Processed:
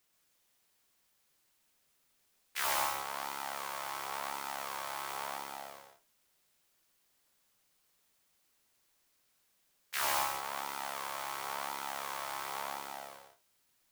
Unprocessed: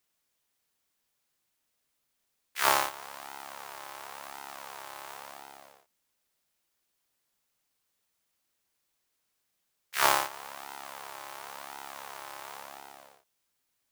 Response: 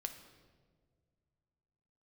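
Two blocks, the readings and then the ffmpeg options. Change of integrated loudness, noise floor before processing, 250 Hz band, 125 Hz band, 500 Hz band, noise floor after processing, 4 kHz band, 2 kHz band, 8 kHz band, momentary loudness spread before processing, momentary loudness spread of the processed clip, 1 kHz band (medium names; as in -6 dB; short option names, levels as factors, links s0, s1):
-3.5 dB, -79 dBFS, -4.0 dB, -2.5 dB, -4.5 dB, -74 dBFS, -3.5 dB, -4.0 dB, -2.5 dB, 19 LU, 13 LU, -3.0 dB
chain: -filter_complex "[0:a]asoftclip=type=hard:threshold=0.0794,acompressor=threshold=0.0112:ratio=2,asplit=2[s0][s1];[1:a]atrim=start_sample=2205,atrim=end_sample=3969,adelay=129[s2];[s1][s2]afir=irnorm=-1:irlink=0,volume=1[s3];[s0][s3]amix=inputs=2:normalize=0,volume=1.41"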